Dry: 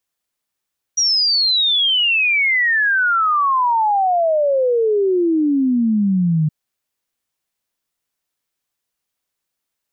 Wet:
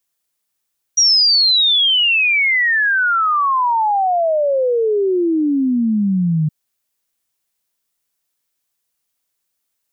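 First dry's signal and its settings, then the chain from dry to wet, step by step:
log sweep 5800 Hz -> 150 Hz 5.52 s -13 dBFS
high shelf 5100 Hz +7.5 dB

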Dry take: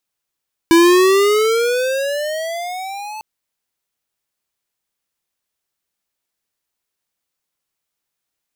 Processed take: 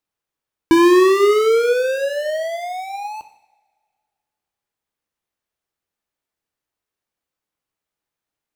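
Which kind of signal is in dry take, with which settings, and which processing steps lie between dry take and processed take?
gliding synth tone square, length 2.50 s, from 329 Hz, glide +17 st, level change -21 dB, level -8.5 dB
high shelf 2600 Hz -10 dB; two-slope reverb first 0.66 s, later 1.9 s, from -21 dB, DRR 8.5 dB

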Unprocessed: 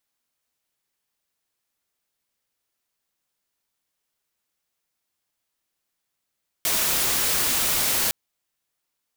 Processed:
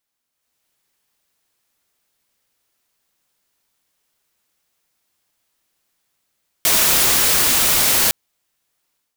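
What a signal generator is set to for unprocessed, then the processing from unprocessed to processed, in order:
noise white, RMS -22.5 dBFS 1.46 s
AGC gain up to 9 dB

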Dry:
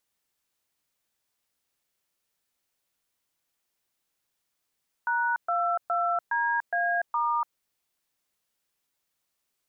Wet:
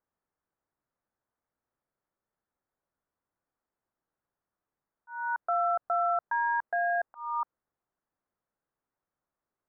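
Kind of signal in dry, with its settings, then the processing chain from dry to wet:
DTMF "#22DA*", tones 0.291 s, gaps 0.123 s, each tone -26 dBFS
Wiener smoothing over 9 samples; LPF 1600 Hz 24 dB/oct; auto swell 0.339 s

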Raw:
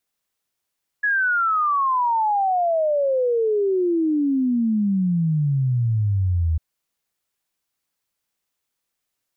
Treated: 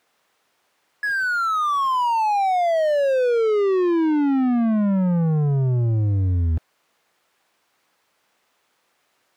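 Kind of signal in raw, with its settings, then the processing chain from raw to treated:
log sweep 1700 Hz -> 78 Hz 5.55 s -17 dBFS
in parallel at -11 dB: short-mantissa float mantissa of 2-bit; on the sum: overdrive pedal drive 29 dB, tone 1000 Hz, clips at -15 dBFS

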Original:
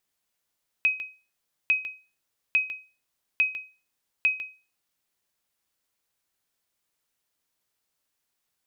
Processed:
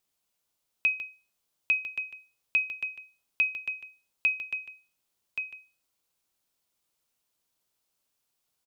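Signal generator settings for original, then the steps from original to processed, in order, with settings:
sonar ping 2530 Hz, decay 0.33 s, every 0.85 s, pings 5, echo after 0.15 s, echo -11.5 dB -14.5 dBFS
bell 1800 Hz -6 dB 0.57 oct; on a send: echo 1.126 s -8 dB

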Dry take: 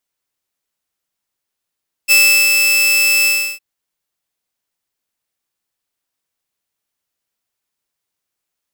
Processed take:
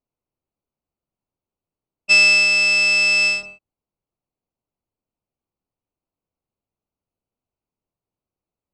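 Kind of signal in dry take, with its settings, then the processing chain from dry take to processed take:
ADSR saw 2630 Hz, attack 34 ms, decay 0.366 s, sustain -4 dB, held 1.18 s, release 0.33 s -4 dBFS
Wiener smoothing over 25 samples; LPF 6400 Hz 24 dB/oct; low shelf 270 Hz +7.5 dB

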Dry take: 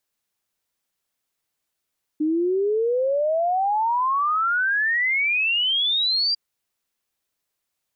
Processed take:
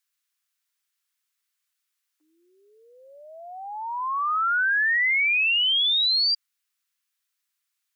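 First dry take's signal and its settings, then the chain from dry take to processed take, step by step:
log sweep 300 Hz -> 4800 Hz 4.15 s -18.5 dBFS
HPF 1200 Hz 24 dB/oct

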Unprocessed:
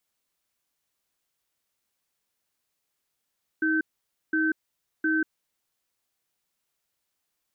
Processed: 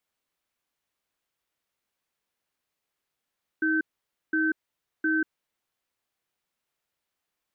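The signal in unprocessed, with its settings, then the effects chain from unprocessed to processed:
cadence 316 Hz, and 1540 Hz, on 0.19 s, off 0.52 s, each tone -24 dBFS 1.68 s
tone controls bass -2 dB, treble -7 dB

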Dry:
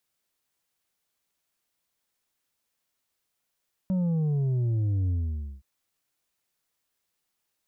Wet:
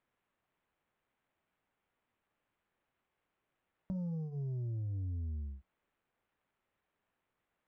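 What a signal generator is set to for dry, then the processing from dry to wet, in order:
sub drop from 190 Hz, over 1.72 s, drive 5 dB, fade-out 0.53 s, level -23.5 dB
compressor 10:1, threshold -33 dBFS; flange 0.45 Hz, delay 9.5 ms, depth 4.3 ms, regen -65%; decimation joined by straight lines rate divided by 8×

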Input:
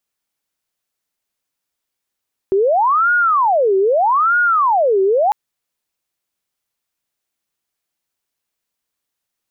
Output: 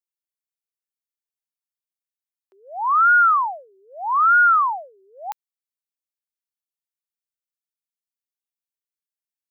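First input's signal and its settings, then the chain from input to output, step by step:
siren wail 382–1440 Hz 0.8/s sine -11 dBFS 2.80 s
HPF 900 Hz 12 dB/oct; tilt +2.5 dB/oct; upward expander 2.5:1, over -29 dBFS

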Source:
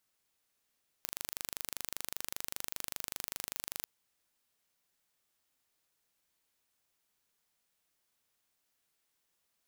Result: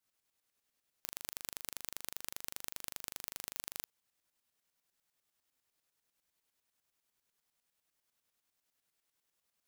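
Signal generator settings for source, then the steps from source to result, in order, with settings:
pulse train 25.1/s, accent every 0, -10 dBFS 2.80 s
tremolo saw up 10 Hz, depth 65%

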